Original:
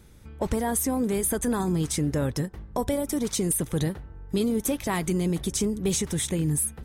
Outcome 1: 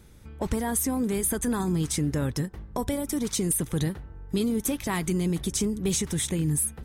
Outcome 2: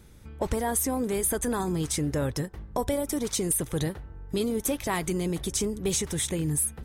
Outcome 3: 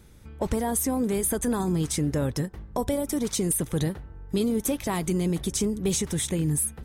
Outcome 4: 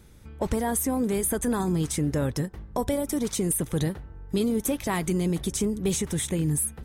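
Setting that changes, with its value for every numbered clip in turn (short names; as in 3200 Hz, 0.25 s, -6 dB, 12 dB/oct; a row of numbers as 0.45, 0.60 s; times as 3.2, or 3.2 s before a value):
dynamic EQ, frequency: 590, 200, 1800, 4900 Hz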